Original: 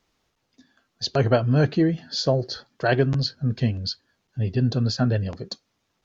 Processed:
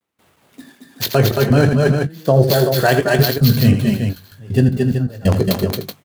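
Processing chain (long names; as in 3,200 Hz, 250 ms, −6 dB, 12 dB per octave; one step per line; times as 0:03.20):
running median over 9 samples
high-pass filter 79 Hz 24 dB per octave
high-shelf EQ 5,800 Hz +11.5 dB
mains-hum notches 50/100/150 Hz
reversed playback
downward compressor 6 to 1, threshold −25 dBFS, peak gain reduction 12 dB
reversed playback
pitch vibrato 0.47 Hz 43 cents
gate pattern ".xxx.xx.x...xxxx" 80 BPM −24 dB
double-tracking delay 21 ms −11.5 dB
on a send: multi-tap delay 81/223/228/301/378 ms −10/−5.5/−6.5/−15/−8 dB
on the sum: boost into a limiter +18.5 dB
level −1.5 dB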